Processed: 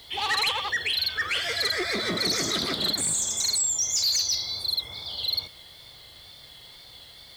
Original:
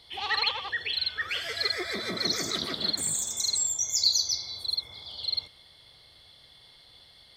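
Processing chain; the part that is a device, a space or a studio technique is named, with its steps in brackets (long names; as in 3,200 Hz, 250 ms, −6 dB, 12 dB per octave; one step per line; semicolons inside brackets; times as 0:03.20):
compact cassette (soft clipping −27.5 dBFS, distortion −9 dB; low-pass filter 12,000 Hz 12 dB per octave; tape wow and flutter; white noise bed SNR 31 dB)
level +7 dB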